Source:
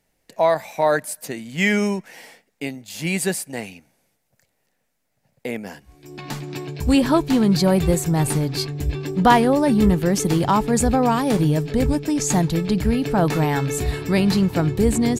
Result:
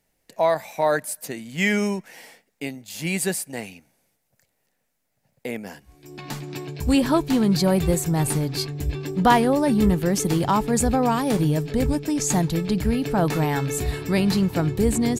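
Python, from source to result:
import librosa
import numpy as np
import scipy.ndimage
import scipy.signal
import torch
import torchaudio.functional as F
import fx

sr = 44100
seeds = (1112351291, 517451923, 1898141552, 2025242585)

y = fx.high_shelf(x, sr, hz=9300.0, db=4.5)
y = y * 10.0 ** (-2.5 / 20.0)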